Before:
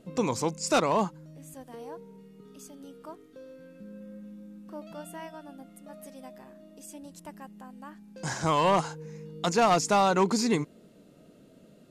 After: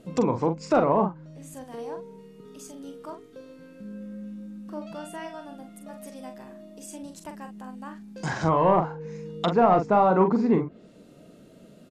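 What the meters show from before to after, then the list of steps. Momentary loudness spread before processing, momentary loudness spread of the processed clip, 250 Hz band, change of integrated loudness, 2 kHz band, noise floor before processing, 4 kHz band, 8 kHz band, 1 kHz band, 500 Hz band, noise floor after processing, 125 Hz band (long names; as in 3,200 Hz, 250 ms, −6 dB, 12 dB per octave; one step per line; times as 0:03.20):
23 LU, 22 LU, +4.5 dB, +2.5 dB, −1.5 dB, −56 dBFS, −7.0 dB, −10.0 dB, +3.0 dB, +4.5 dB, −51 dBFS, +4.5 dB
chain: treble cut that deepens with the level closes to 1,100 Hz, closed at −25 dBFS
double-tracking delay 43 ms −7 dB
level +4 dB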